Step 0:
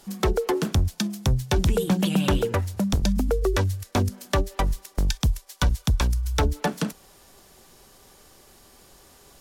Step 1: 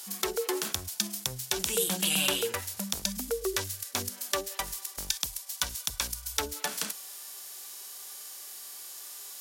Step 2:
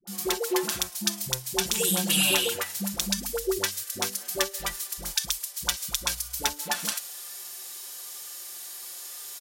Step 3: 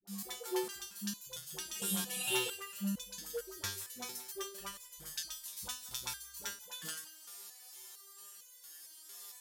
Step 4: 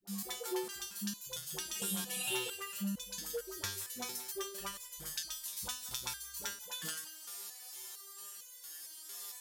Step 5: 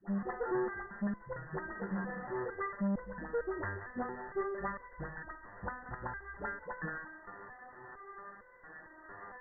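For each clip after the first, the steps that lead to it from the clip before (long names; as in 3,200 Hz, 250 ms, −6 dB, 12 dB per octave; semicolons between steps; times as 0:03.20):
spectral tilt +4 dB per octave; harmonic and percussive parts rebalanced percussive −12 dB; low-shelf EQ 360 Hz −10.5 dB; level +4 dB
comb filter 5.7 ms, depth 70%; all-pass dispersion highs, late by 74 ms, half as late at 560 Hz; level +2 dB
parametric band 90 Hz +4.5 dB 0.86 octaves; echo with a time of its own for lows and highs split 620 Hz, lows 96 ms, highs 177 ms, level −15.5 dB; step-sequenced resonator 4.4 Hz 100–500 Hz; level −1 dB
downward compressor 2 to 1, threshold −43 dBFS, peak gain reduction 8.5 dB; level +4.5 dB
tube saturation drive 45 dB, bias 0.4; linear-phase brick-wall low-pass 2,000 Hz; level +15 dB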